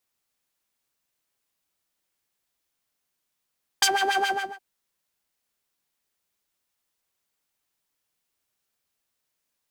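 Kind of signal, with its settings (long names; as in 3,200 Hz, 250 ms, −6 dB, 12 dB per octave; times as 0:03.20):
subtractive patch with filter wobble G5, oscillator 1 triangle, interval +12 semitones, oscillator 2 level −2 dB, sub −12 dB, noise −3 dB, filter bandpass, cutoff 490 Hz, Q 1.5, filter envelope 2.5 octaves, filter decay 0.07 s, attack 6.1 ms, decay 0.06 s, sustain −10.5 dB, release 0.34 s, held 0.43 s, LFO 7.2 Hz, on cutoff 1.7 octaves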